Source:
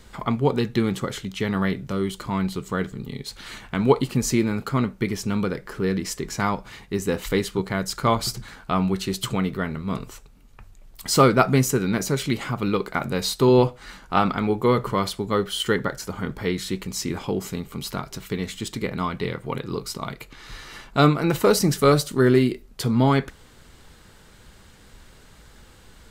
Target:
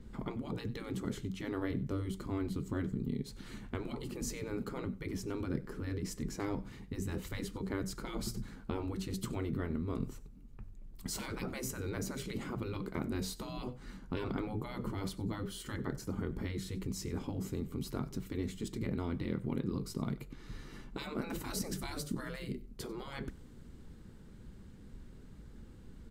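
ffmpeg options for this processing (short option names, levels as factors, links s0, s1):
-af "afftfilt=real='re*lt(hypot(re,im),0.224)':imag='im*lt(hypot(re,im),0.224)':win_size=1024:overlap=0.75,firequalizer=gain_entry='entry(100,0);entry(220,4);entry(640,-12);entry(3100,-16)':delay=0.05:min_phase=1,aecho=1:1:94|188:0.0944|0.0179,adynamicequalizer=threshold=0.00112:dfrequency=4700:dqfactor=0.7:tfrequency=4700:tqfactor=0.7:attack=5:release=100:ratio=0.375:range=2:mode=boostabove:tftype=highshelf,volume=0.841"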